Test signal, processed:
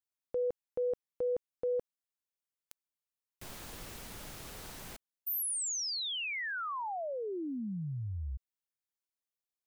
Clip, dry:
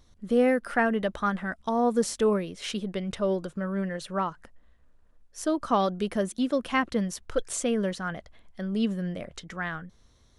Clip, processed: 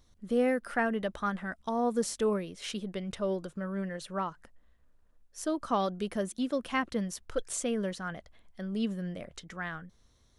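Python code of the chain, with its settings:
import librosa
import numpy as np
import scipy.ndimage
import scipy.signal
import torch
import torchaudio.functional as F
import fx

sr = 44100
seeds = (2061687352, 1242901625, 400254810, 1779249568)

y = fx.high_shelf(x, sr, hz=6400.0, db=3.5)
y = F.gain(torch.from_numpy(y), -5.0).numpy()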